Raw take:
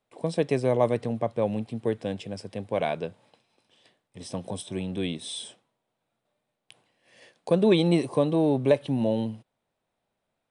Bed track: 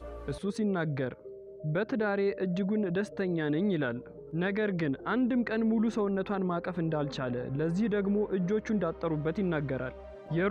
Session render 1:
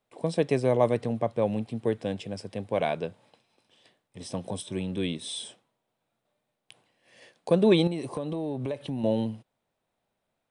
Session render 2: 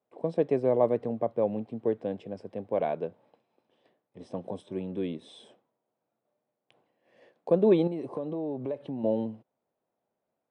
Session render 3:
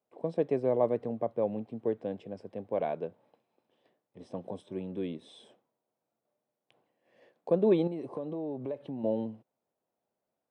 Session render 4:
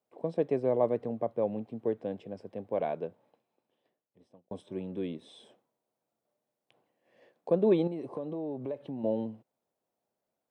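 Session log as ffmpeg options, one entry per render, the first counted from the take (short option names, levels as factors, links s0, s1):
-filter_complex "[0:a]asettb=1/sr,asplit=3[s0][s1][s2];[s0]atrim=end=4.604[s3];[s1]atrim=start=4.6:end=5.28,asetpts=PTS-STARTPTS,afade=t=in:d=0.004:c=qsin,afade=t=out:st=0.676:d=0.004:c=qsin,bandreject=f=730:w=5.2[s4];[s2]atrim=start=5.276[s5];[s3][s4]acrossfade=d=0.004:c1=hsin:c2=qsin[s6];[s6][s5]acrossfade=d=0.004:c1=qsin:c2=hsin,asettb=1/sr,asplit=3[s7][s8][s9];[s7]atrim=end=7.874[s10];[s8]atrim=start=7.87:end=9.04,asetpts=PTS-STARTPTS,afade=t=in:d=0.004:c=qsin,afade=t=out:st=1.166:d=0.004:c=qsin,acompressor=threshold=0.0398:ratio=6:attack=3.2:release=140:knee=1:detection=peak[s11];[s9]atrim=start=9.036[s12];[s10][s11]acrossfade=d=0.004:c1=hsin:c2=qsin[s13];[s13][s12]acrossfade=d=0.004:c1=qsin:c2=hsin"
-af "bandpass=f=440:t=q:w=0.7:csg=0"
-af "volume=0.708"
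-filter_complex "[0:a]asplit=2[s0][s1];[s0]atrim=end=4.51,asetpts=PTS-STARTPTS,afade=t=out:st=3.03:d=1.48[s2];[s1]atrim=start=4.51,asetpts=PTS-STARTPTS,afade=t=in:d=0.004:c=hsin[s3];[s2][s3]concat=n=2:v=0:a=1"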